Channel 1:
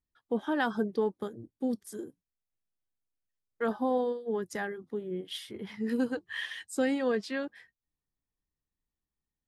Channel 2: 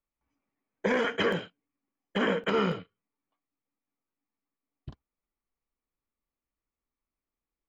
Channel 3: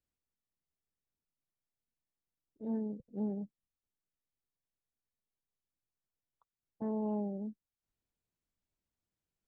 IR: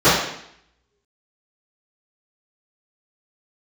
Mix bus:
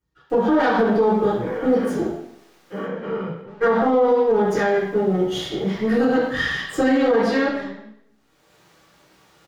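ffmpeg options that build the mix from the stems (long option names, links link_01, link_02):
-filter_complex "[0:a]aeval=exprs='if(lt(val(0),0),0.251*val(0),val(0))':channel_layout=same,volume=-1.5dB,asplit=2[link_01][link_02];[link_02]volume=-7dB[link_03];[1:a]highshelf=frequency=3300:gain=-12,adelay=550,volume=-19.5dB,asplit=2[link_04][link_05];[link_05]volume=-10.5dB[link_06];[2:a]acompressor=mode=upward:threshold=-43dB:ratio=2.5,asplit=2[link_07][link_08];[link_08]highpass=frequency=720:poles=1,volume=32dB,asoftclip=type=tanh:threshold=-27dB[link_09];[link_07][link_09]amix=inputs=2:normalize=0,lowpass=frequency=3500:poles=1,volume=-6dB,adelay=300,volume=-14.5dB,asplit=2[link_10][link_11];[link_11]volume=-19.5dB[link_12];[3:a]atrim=start_sample=2205[link_13];[link_03][link_06][link_12]amix=inputs=3:normalize=0[link_14];[link_14][link_13]afir=irnorm=-1:irlink=0[link_15];[link_01][link_04][link_10][link_15]amix=inputs=4:normalize=0,alimiter=limit=-10dB:level=0:latency=1:release=60"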